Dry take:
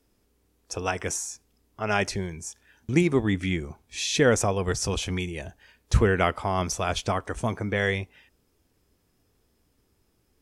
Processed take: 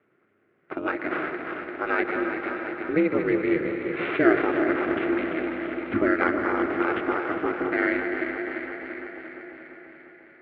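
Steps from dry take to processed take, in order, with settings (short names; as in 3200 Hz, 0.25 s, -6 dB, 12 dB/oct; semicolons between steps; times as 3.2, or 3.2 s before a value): regenerating reverse delay 0.172 s, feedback 78%, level -8.5 dB; in parallel at -1 dB: compressor, threshold -31 dBFS, peak gain reduction 16 dB; on the sum: sample-and-hold 7×; on a send at -7 dB: reverb RT60 4.7 s, pre-delay 90 ms; on the sum: ring modulator 160 Hz; speaker cabinet 220–2200 Hz, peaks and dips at 230 Hz -7 dB, 350 Hz +10 dB, 550 Hz -4 dB, 930 Hz -8 dB, 1400 Hz +7 dB, 2100 Hz +6 dB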